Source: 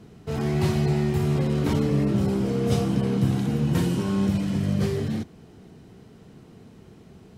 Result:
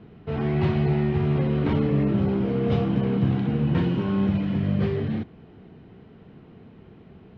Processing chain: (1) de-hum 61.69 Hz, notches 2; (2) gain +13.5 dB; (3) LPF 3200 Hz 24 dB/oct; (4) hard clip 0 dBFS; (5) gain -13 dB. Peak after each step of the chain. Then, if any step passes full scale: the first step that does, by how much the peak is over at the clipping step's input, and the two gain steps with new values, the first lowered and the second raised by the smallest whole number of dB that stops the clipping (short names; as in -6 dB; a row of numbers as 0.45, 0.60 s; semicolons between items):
-10.0, +3.5, +3.5, 0.0, -13.0 dBFS; step 2, 3.5 dB; step 2 +9.5 dB, step 5 -9 dB